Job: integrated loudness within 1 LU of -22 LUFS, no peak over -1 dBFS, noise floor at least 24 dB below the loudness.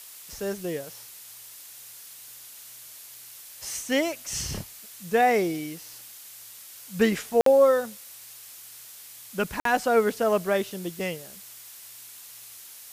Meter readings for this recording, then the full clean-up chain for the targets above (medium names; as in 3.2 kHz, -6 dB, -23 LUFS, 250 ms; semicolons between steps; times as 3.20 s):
dropouts 2; longest dropout 53 ms; noise floor -46 dBFS; noise floor target -50 dBFS; loudness -25.5 LUFS; peak level -9.0 dBFS; loudness target -22.0 LUFS
-> interpolate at 7.41/9.60 s, 53 ms; noise reduction 6 dB, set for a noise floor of -46 dBFS; trim +3.5 dB